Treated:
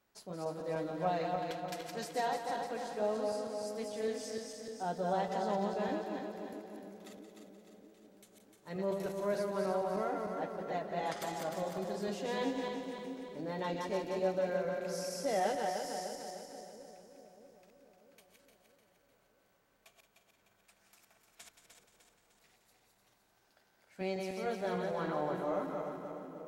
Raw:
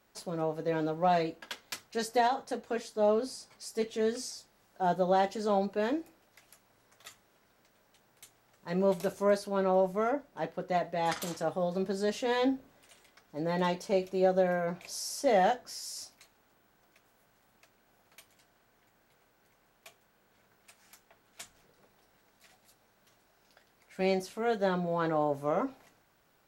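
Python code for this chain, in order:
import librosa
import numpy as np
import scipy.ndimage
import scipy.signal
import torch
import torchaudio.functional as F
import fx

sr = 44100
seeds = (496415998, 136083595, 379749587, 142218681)

y = fx.reverse_delay_fb(x, sr, ms=151, feedback_pct=70, wet_db=-3.5)
y = fx.echo_split(y, sr, split_hz=510.0, low_ms=641, high_ms=175, feedback_pct=52, wet_db=-10)
y = y * librosa.db_to_amplitude(-8.5)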